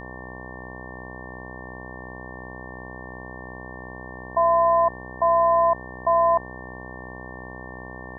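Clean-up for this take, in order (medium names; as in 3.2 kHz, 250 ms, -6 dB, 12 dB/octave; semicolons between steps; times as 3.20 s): de-hum 62.8 Hz, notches 18; band-stop 1.8 kHz, Q 30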